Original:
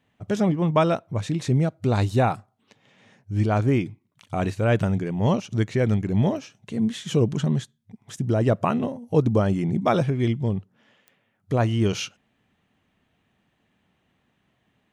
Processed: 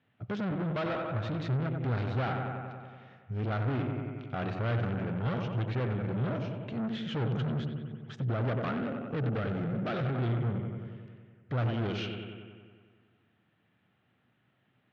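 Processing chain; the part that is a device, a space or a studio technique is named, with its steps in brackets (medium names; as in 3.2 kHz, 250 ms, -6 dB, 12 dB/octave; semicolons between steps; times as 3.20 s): analogue delay pedal into a guitar amplifier (bucket-brigade echo 93 ms, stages 2048, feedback 69%, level -9 dB; valve stage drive 28 dB, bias 0.5; cabinet simulation 98–3900 Hz, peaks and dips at 120 Hz +8 dB, 990 Hz -3 dB, 1.4 kHz +6 dB); 8.74–10.15 s: peaking EQ 980 Hz -9 dB 0.32 oct; trim -2.5 dB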